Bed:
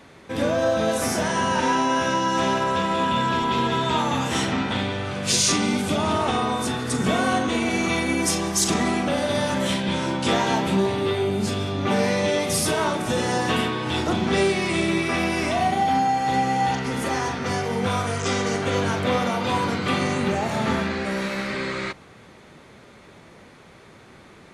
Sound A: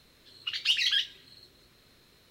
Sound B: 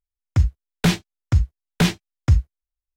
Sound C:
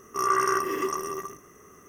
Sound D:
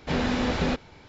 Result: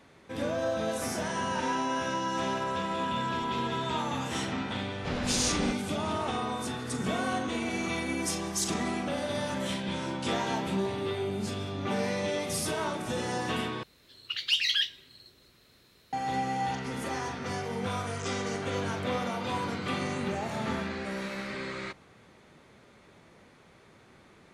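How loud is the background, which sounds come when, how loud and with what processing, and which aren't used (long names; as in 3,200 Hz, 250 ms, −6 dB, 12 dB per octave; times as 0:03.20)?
bed −9 dB
0:04.97: mix in D −7.5 dB
0:13.83: overwrite with A −0.5 dB + high-pass filter 42 Hz
not used: B, C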